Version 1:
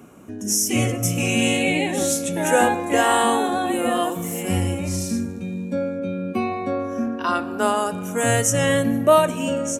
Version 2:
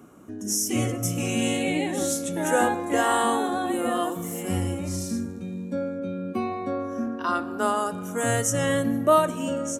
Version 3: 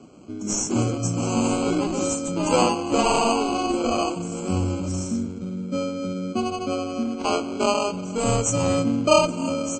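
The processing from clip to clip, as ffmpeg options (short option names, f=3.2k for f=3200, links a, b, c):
-af "equalizer=f=315:t=o:w=0.33:g=4,equalizer=f=1.25k:t=o:w=0.33:g=4,equalizer=f=2.5k:t=o:w=0.33:g=-6,volume=-5dB"
-filter_complex "[0:a]acrossover=split=500|5100[a][b][c];[b]acrusher=samples=24:mix=1:aa=0.000001[d];[a][d][c]amix=inputs=3:normalize=0,volume=3.5dB" -ar 22050 -c:a libmp3lame -b:a 32k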